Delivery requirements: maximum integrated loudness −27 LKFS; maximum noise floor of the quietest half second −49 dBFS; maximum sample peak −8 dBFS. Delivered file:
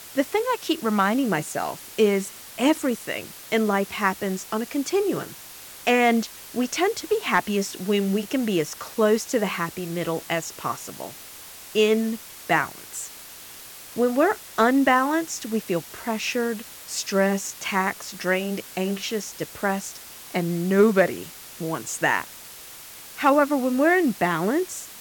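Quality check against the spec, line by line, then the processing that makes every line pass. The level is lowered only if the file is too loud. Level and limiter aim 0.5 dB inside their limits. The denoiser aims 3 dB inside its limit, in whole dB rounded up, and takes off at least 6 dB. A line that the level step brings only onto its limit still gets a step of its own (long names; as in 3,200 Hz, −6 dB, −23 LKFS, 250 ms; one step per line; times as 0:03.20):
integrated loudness −24.0 LKFS: out of spec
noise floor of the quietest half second −42 dBFS: out of spec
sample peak −7.5 dBFS: out of spec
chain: broadband denoise 7 dB, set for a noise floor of −42 dBFS
level −3.5 dB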